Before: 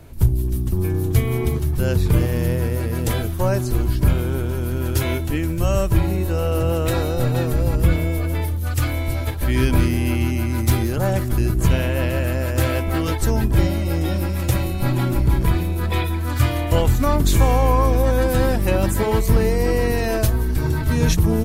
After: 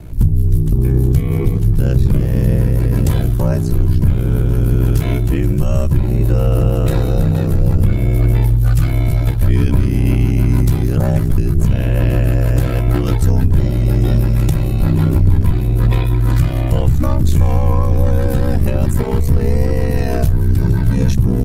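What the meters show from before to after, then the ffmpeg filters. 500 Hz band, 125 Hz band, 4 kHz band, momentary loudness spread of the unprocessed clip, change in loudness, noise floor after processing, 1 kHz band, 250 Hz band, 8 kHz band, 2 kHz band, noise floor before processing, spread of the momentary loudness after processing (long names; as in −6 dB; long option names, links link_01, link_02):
0.0 dB, +6.5 dB, −3.5 dB, 5 LU, +5.0 dB, −17 dBFS, −3.0 dB, +4.0 dB, can't be measured, −3.0 dB, −23 dBFS, 2 LU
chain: -af "alimiter=limit=-14.5dB:level=0:latency=1:release=439,lowshelf=frequency=280:gain=11.5,aeval=exprs='val(0)*sin(2*PI*32*n/s)':channel_layout=same,acontrast=33"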